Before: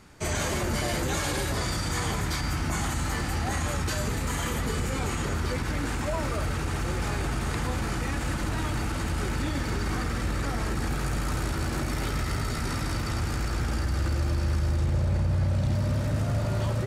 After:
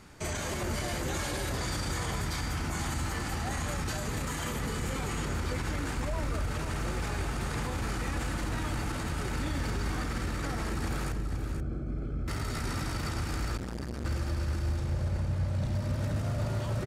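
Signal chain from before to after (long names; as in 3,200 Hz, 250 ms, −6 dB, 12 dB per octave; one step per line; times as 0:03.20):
0:05.97–0:06.48: low-shelf EQ 71 Hz +11 dB
brickwall limiter −25 dBFS, peak gain reduction 11 dB
0:11.12–0:12.28: moving average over 47 samples
single-tap delay 482 ms −8.5 dB
0:13.57–0:14.05: saturating transformer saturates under 340 Hz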